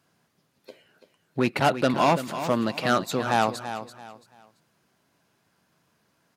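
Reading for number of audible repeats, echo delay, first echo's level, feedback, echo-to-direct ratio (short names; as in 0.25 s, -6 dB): 3, 0.336 s, -11.0 dB, 29%, -10.5 dB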